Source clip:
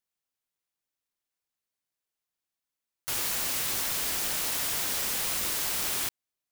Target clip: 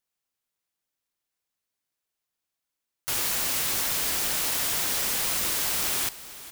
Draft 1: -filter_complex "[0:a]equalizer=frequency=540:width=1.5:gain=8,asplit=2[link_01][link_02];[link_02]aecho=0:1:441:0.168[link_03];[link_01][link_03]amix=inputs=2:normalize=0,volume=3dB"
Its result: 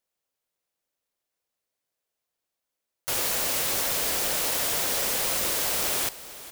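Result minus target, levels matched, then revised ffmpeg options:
500 Hz band +6.5 dB
-filter_complex "[0:a]asplit=2[link_01][link_02];[link_02]aecho=0:1:441:0.168[link_03];[link_01][link_03]amix=inputs=2:normalize=0,volume=3dB"

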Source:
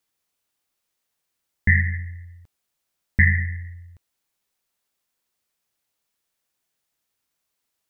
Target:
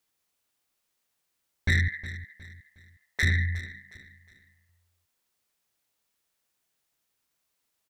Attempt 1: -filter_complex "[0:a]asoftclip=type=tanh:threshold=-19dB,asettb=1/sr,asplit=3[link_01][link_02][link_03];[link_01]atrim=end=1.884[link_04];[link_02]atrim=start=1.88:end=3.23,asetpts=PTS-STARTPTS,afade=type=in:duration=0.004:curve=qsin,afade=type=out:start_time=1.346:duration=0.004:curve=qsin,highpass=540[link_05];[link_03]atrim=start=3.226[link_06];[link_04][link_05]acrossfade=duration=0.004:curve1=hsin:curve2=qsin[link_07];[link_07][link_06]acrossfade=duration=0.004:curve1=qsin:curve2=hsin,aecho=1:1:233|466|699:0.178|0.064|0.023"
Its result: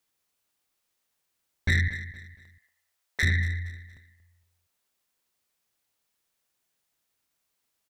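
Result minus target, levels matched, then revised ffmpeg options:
echo 129 ms early
-filter_complex "[0:a]asoftclip=type=tanh:threshold=-19dB,asettb=1/sr,asplit=3[link_01][link_02][link_03];[link_01]atrim=end=1.884[link_04];[link_02]atrim=start=1.88:end=3.23,asetpts=PTS-STARTPTS,afade=type=in:duration=0.004:curve=qsin,afade=type=out:start_time=1.346:duration=0.004:curve=qsin,highpass=540[link_05];[link_03]atrim=start=3.226[link_06];[link_04][link_05]acrossfade=duration=0.004:curve1=hsin:curve2=qsin[link_07];[link_07][link_06]acrossfade=duration=0.004:curve1=qsin:curve2=hsin,aecho=1:1:362|724|1086:0.178|0.064|0.023"

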